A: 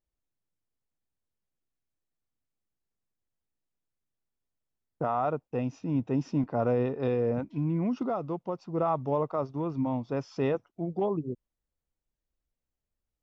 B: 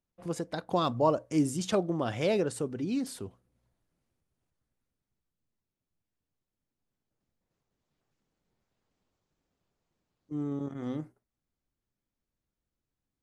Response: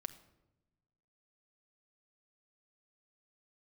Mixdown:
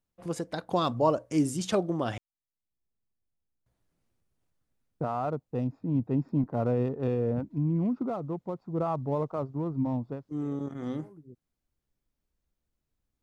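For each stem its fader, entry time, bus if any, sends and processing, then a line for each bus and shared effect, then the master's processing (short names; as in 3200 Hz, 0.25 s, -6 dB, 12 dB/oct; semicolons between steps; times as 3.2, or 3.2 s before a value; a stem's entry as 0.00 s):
-4.0 dB, 0.00 s, no send, Wiener smoothing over 15 samples; low shelf 290 Hz +8 dB; auto duck -24 dB, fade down 0.20 s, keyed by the second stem
+1.0 dB, 0.00 s, muted 2.18–3.66, no send, dry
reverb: off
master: dry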